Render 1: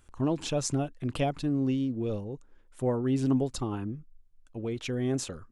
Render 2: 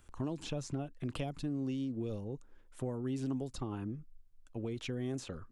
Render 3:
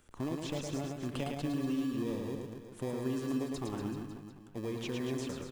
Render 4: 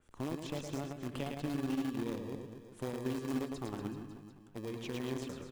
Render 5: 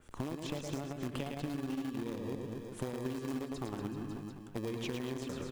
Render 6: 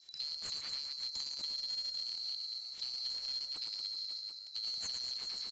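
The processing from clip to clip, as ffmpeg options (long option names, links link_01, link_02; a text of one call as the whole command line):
ffmpeg -i in.wav -filter_complex "[0:a]acrossover=split=300|4600[link_01][link_02][link_03];[link_01]acompressor=threshold=-37dB:ratio=4[link_04];[link_02]acompressor=threshold=-41dB:ratio=4[link_05];[link_03]acompressor=threshold=-54dB:ratio=4[link_06];[link_04][link_05][link_06]amix=inputs=3:normalize=0,volume=-1dB" out.wav
ffmpeg -i in.wav -filter_complex "[0:a]lowshelf=frequency=120:gain=-11.5,asplit=2[link_01][link_02];[link_02]acrusher=samples=31:mix=1:aa=0.000001,volume=-7dB[link_03];[link_01][link_03]amix=inputs=2:normalize=0,aecho=1:1:110|236.5|382|549.3|741.7:0.631|0.398|0.251|0.158|0.1" out.wav
ffmpeg -i in.wav -filter_complex "[0:a]asplit=2[link_01][link_02];[link_02]acrusher=bits=4:mix=0:aa=0.000001,volume=-10dB[link_03];[link_01][link_03]amix=inputs=2:normalize=0,adynamicequalizer=threshold=0.00158:dfrequency=3700:dqfactor=0.7:tfrequency=3700:tqfactor=0.7:attack=5:release=100:ratio=0.375:range=1.5:mode=cutabove:tftype=highshelf,volume=-4dB" out.wav
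ffmpeg -i in.wav -af "acompressor=threshold=-43dB:ratio=6,volume=8.5dB" out.wav
ffmpeg -i in.wav -af "afftfilt=real='real(if(lt(b,736),b+184*(1-2*mod(floor(b/184),2)),b),0)':imag='imag(if(lt(b,736),b+184*(1-2*mod(floor(b/184),2)),b),0)':win_size=2048:overlap=0.75,aresample=16000,asoftclip=type=tanh:threshold=-32dB,aresample=44100" out.wav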